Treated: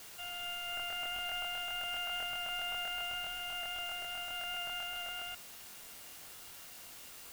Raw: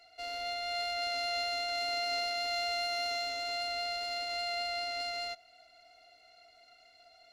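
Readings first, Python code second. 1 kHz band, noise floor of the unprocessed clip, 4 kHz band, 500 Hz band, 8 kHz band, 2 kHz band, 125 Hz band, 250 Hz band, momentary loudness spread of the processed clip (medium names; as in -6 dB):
-5.5 dB, -61 dBFS, -4.0 dB, -11.5 dB, +1.0 dB, -1.5 dB, no reading, -4.0 dB, 12 LU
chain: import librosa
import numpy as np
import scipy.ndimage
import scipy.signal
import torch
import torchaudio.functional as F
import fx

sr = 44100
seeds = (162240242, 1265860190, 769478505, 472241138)

y = fx.freq_invert(x, sr, carrier_hz=3500)
y = fx.quant_dither(y, sr, seeds[0], bits=8, dither='triangular')
y = fx.buffer_crackle(y, sr, first_s=0.75, period_s=0.13, block=1024, kind='repeat')
y = y * librosa.db_to_amplitude(-3.0)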